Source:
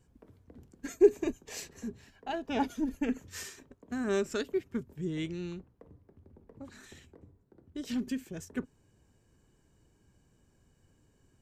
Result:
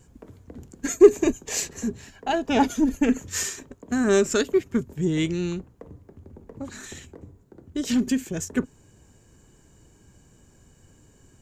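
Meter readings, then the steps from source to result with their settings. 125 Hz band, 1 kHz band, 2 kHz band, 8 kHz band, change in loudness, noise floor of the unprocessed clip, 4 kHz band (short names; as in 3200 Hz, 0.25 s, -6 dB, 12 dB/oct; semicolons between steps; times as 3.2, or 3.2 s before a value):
+11.0 dB, +10.5 dB, +10.5 dB, +16.5 dB, +10.0 dB, -69 dBFS, +11.5 dB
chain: bell 6900 Hz +8 dB 0.32 oct; in parallel at -5 dB: soft clip -25 dBFS, distortion -7 dB; on the sum: gain +7.5 dB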